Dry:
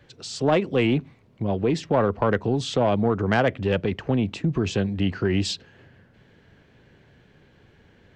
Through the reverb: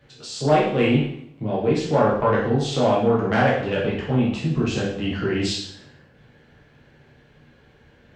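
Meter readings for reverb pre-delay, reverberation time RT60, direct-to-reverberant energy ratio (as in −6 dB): 5 ms, 0.65 s, −6.0 dB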